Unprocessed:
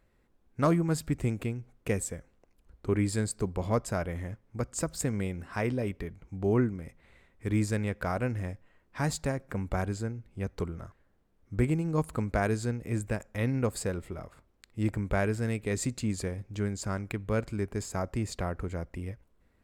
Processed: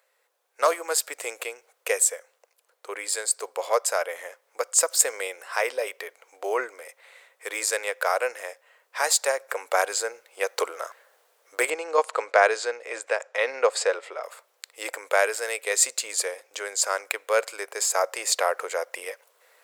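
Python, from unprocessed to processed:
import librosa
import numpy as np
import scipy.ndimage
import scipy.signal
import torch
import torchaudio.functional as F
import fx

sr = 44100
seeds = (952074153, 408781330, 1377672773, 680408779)

y = fx.air_absorb(x, sr, metres=120.0, at=(11.7, 14.24))
y = scipy.signal.sosfilt(scipy.signal.ellip(4, 1.0, 60, 490.0, 'highpass', fs=sr, output='sos'), y)
y = fx.high_shelf(y, sr, hz=3800.0, db=10.0)
y = fx.rider(y, sr, range_db=10, speed_s=2.0)
y = y * librosa.db_to_amplitude(8.5)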